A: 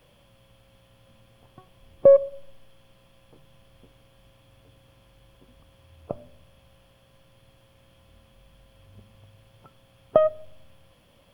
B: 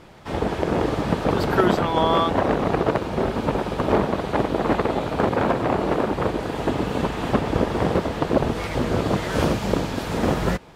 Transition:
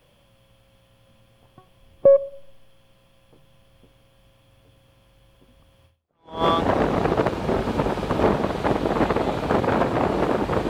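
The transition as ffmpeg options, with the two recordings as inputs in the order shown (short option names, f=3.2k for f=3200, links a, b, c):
-filter_complex "[0:a]apad=whole_dur=10.69,atrim=end=10.69,atrim=end=6.44,asetpts=PTS-STARTPTS[a];[1:a]atrim=start=1.55:end=6.38,asetpts=PTS-STARTPTS[b];[a][b]acrossfade=d=0.58:c1=exp:c2=exp"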